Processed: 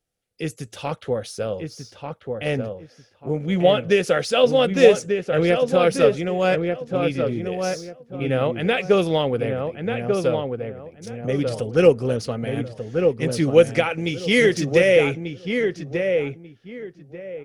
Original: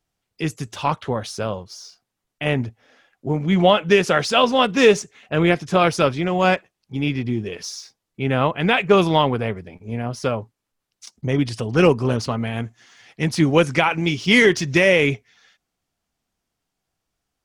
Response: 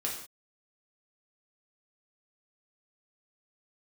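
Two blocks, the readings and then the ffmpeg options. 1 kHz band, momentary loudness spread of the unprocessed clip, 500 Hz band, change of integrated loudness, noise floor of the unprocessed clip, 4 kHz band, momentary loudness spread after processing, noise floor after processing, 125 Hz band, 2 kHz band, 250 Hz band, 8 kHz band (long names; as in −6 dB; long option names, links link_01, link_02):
−6.0 dB, 15 LU, +2.0 dB, −1.5 dB, −81 dBFS, −4.0 dB, 17 LU, −56 dBFS, −3.0 dB, −4.0 dB, −3.0 dB, −3.0 dB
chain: -filter_complex "[0:a]equalizer=frequency=500:width_type=o:width=0.33:gain=10,equalizer=frequency=1000:width_type=o:width=0.33:gain=-11,equalizer=frequency=10000:width_type=o:width=0.33:gain=7,asplit=2[link_01][link_02];[link_02]adelay=1190,lowpass=frequency=1700:poles=1,volume=-4.5dB,asplit=2[link_03][link_04];[link_04]adelay=1190,lowpass=frequency=1700:poles=1,volume=0.24,asplit=2[link_05][link_06];[link_06]adelay=1190,lowpass=frequency=1700:poles=1,volume=0.24[link_07];[link_03][link_05][link_07]amix=inputs=3:normalize=0[link_08];[link_01][link_08]amix=inputs=2:normalize=0,volume=-4.5dB"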